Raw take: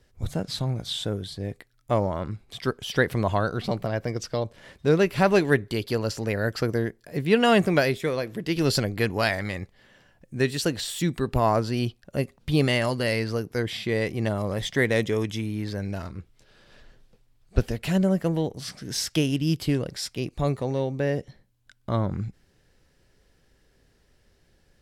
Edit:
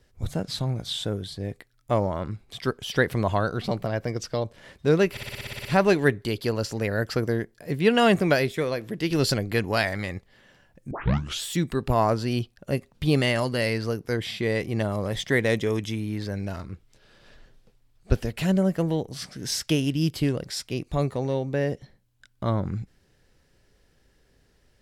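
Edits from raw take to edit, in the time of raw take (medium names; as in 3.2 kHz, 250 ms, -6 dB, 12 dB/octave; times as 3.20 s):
5.11 s: stutter 0.06 s, 10 plays
10.37 s: tape start 0.53 s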